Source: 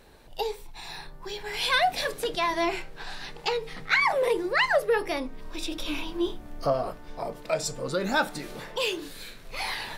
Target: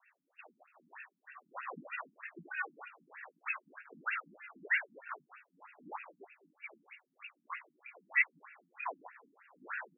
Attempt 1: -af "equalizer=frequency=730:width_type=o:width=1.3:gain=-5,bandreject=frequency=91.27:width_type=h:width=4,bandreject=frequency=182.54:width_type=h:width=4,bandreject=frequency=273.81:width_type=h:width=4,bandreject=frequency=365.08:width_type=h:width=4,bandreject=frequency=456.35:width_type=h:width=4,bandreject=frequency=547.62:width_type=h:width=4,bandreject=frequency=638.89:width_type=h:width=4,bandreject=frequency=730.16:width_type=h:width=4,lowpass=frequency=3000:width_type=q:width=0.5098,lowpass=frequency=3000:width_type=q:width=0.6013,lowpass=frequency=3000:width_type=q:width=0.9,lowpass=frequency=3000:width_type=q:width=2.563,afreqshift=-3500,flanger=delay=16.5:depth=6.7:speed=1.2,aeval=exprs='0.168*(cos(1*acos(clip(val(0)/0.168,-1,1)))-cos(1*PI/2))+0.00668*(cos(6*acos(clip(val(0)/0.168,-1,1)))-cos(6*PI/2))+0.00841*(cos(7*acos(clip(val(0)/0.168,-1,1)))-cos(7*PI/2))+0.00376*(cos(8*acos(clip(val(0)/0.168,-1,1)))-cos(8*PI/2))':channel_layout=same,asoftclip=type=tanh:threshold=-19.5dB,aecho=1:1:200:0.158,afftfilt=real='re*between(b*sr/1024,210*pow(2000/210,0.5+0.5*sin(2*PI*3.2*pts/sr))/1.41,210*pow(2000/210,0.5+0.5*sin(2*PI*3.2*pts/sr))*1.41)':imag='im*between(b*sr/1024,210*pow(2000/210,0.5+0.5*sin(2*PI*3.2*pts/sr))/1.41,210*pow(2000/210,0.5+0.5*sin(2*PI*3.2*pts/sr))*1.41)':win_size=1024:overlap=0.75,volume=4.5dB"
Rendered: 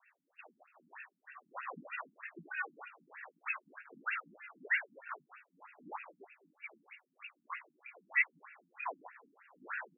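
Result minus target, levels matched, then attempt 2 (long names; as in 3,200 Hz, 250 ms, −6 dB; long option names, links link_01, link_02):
soft clipping: distortion +18 dB
-af "equalizer=frequency=730:width_type=o:width=1.3:gain=-5,bandreject=frequency=91.27:width_type=h:width=4,bandreject=frequency=182.54:width_type=h:width=4,bandreject=frequency=273.81:width_type=h:width=4,bandreject=frequency=365.08:width_type=h:width=4,bandreject=frequency=456.35:width_type=h:width=4,bandreject=frequency=547.62:width_type=h:width=4,bandreject=frequency=638.89:width_type=h:width=4,bandreject=frequency=730.16:width_type=h:width=4,lowpass=frequency=3000:width_type=q:width=0.5098,lowpass=frequency=3000:width_type=q:width=0.6013,lowpass=frequency=3000:width_type=q:width=0.9,lowpass=frequency=3000:width_type=q:width=2.563,afreqshift=-3500,flanger=delay=16.5:depth=6.7:speed=1.2,aeval=exprs='0.168*(cos(1*acos(clip(val(0)/0.168,-1,1)))-cos(1*PI/2))+0.00668*(cos(6*acos(clip(val(0)/0.168,-1,1)))-cos(6*PI/2))+0.00841*(cos(7*acos(clip(val(0)/0.168,-1,1)))-cos(7*PI/2))+0.00376*(cos(8*acos(clip(val(0)/0.168,-1,1)))-cos(8*PI/2))':channel_layout=same,asoftclip=type=tanh:threshold=-9.5dB,aecho=1:1:200:0.158,afftfilt=real='re*between(b*sr/1024,210*pow(2000/210,0.5+0.5*sin(2*PI*3.2*pts/sr))/1.41,210*pow(2000/210,0.5+0.5*sin(2*PI*3.2*pts/sr))*1.41)':imag='im*between(b*sr/1024,210*pow(2000/210,0.5+0.5*sin(2*PI*3.2*pts/sr))/1.41,210*pow(2000/210,0.5+0.5*sin(2*PI*3.2*pts/sr))*1.41)':win_size=1024:overlap=0.75,volume=4.5dB"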